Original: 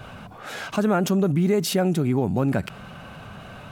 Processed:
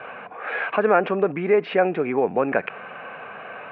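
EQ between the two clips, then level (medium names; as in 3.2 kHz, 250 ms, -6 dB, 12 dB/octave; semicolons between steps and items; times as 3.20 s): distance through air 250 m; cabinet simulation 390–2800 Hz, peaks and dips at 470 Hz +9 dB, 740 Hz +4 dB, 1.1 kHz +5 dB, 1.7 kHz +8 dB, 2.4 kHz +10 dB; +3.0 dB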